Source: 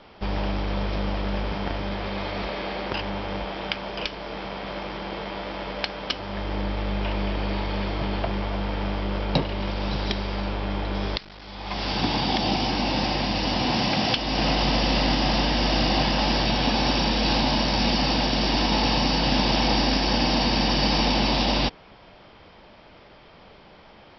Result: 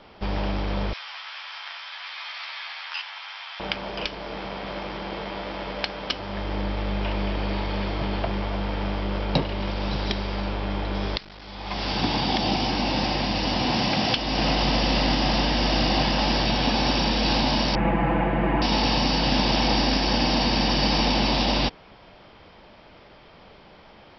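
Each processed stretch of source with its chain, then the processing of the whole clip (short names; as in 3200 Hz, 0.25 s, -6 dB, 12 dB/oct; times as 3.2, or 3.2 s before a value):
0.93–3.6 Bessel high-pass 1600 Hz, order 6 + doubler 13 ms -2.5 dB
17.75–18.62 steep low-pass 2200 Hz + comb 6 ms, depth 83%
whole clip: dry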